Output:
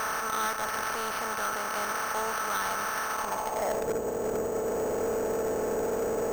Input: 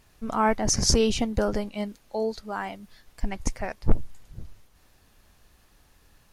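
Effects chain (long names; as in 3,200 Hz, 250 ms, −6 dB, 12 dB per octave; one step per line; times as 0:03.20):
compressor on every frequency bin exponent 0.2
low-pass filter 4,500 Hz 24 dB per octave
in parallel at −0.5 dB: compressor whose output falls as the input rises −18 dBFS
on the sum: band-pass filter sweep 1,400 Hz → 460 Hz, 0:03.10–0:03.92
decimation without filtering 6×
soft clipping −22 dBFS, distortion −11 dB
level −2.5 dB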